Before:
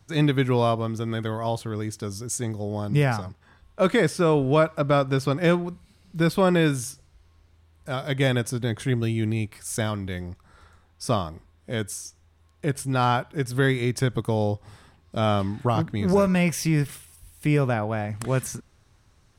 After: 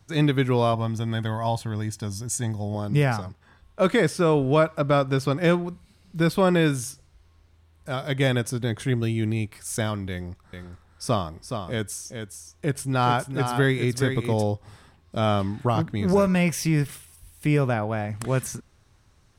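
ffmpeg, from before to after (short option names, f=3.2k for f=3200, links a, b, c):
-filter_complex "[0:a]asettb=1/sr,asplit=3[a][b][c];[a]atrim=end=0.734[d];[b]atrim=start=0.73:end=2.75,asetpts=PTS-STARTPTS,afade=t=in:d=0.004:c=qsin,afade=t=out:st=2.016:d=0.004:c=qsin,aecho=1:1:1.2:0.52,atrim=end_sample=89082[e];[c]atrim=start=2.746[f];[d][e]acrossfade=d=0.004:c1=hsin:c2=qsin[g];[g][f]acrossfade=d=0.004:c1=qsin:c2=hsin,asettb=1/sr,asplit=3[h][i][j];[h]atrim=end=10.114[k];[i]atrim=start=10.11:end=14.43,asetpts=PTS-STARTPTS,afade=t=in:d=0.004:c=qsin,afade=t=out:st=4.316:d=0.004:c=qsin,aecho=1:1:420:0.447,atrim=end_sample=190512[l];[j]atrim=start=14.426[m];[k][l]acrossfade=d=0.004:c1=hsin:c2=qsin[n];[n][m]acrossfade=d=0.004:c1=qsin:c2=hsin"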